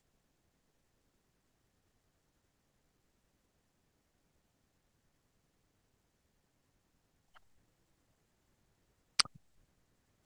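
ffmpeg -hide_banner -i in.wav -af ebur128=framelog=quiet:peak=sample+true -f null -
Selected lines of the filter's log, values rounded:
Integrated loudness:
  I:         -33.7 LUFS
  Threshold: -46.7 LUFS
Loudness range:
  LRA:         3.5 LU
  Threshold: -61.7 LUFS
  LRA low:   -45.1 LUFS
  LRA high:  -41.5 LUFS
Sample peak:
  Peak:       -7.5 dBFS
True peak:
  Peak:       -7.3 dBFS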